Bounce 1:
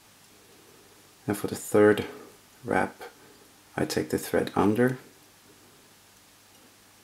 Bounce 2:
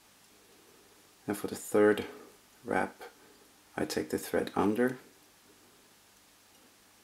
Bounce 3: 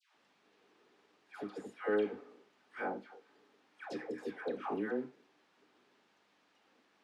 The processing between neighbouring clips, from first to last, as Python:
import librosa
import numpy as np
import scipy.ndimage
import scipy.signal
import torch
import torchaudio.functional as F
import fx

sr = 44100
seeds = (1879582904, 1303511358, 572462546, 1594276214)

y1 = fx.peak_eq(x, sr, hz=120.0, db=-14.5, octaves=0.32)
y1 = y1 * librosa.db_to_amplitude(-5.0)
y2 = fx.bandpass_edges(y1, sr, low_hz=210.0, high_hz=3200.0)
y2 = fx.dispersion(y2, sr, late='lows', ms=150.0, hz=1000.0)
y2 = y2 * librosa.db_to_amplitude(-7.0)